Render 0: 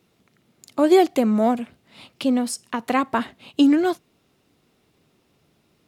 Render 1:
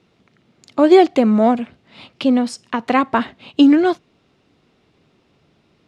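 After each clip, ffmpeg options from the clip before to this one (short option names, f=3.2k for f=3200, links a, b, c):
-af "lowpass=4.8k,volume=5dB"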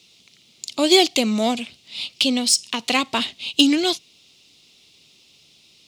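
-af "aexciter=amount=5.9:drive=9.9:freq=2.5k,volume=-7dB"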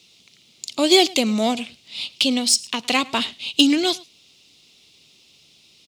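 -af "aecho=1:1:107:0.0708"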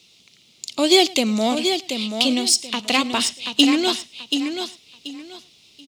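-af "aecho=1:1:732|1464|2196:0.447|0.112|0.0279"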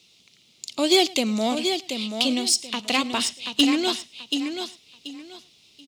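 -af "asoftclip=type=hard:threshold=-6dB,volume=-3.5dB"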